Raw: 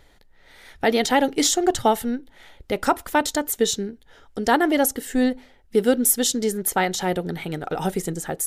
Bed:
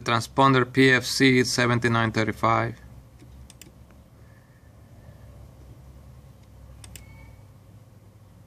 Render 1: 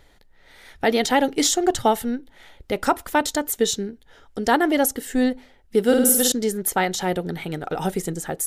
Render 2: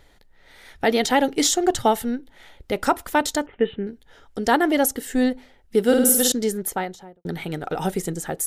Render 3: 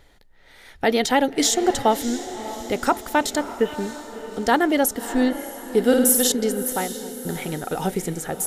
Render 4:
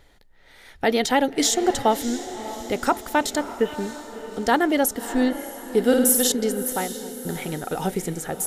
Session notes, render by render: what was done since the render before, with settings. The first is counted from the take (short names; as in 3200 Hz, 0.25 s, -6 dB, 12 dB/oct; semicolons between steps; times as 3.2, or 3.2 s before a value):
5.84–6.32 flutter echo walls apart 9 m, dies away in 0.83 s
3.46–3.87 steep low-pass 3000 Hz 72 dB/oct; 6.47–7.25 studio fade out
diffused feedback echo 0.622 s, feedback 49%, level -12.5 dB
gain -1 dB